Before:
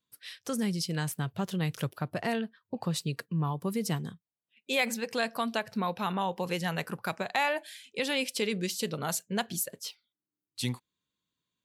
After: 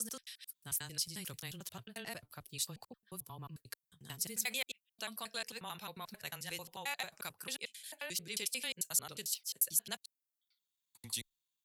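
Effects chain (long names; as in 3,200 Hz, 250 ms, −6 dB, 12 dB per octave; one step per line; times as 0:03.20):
slices reordered back to front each 89 ms, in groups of 7
first-order pre-emphasis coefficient 0.9
frequency shifter −14 Hz
level +1 dB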